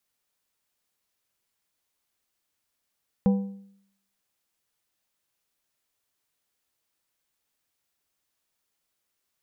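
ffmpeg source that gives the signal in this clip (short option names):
-f lavfi -i "aevalsrc='0.178*pow(10,-3*t/0.69)*sin(2*PI*197*t)+0.0596*pow(10,-3*t/0.524)*sin(2*PI*492.5*t)+0.02*pow(10,-3*t/0.455)*sin(2*PI*788*t)+0.00668*pow(10,-3*t/0.426)*sin(2*PI*985*t)':d=1.55:s=44100"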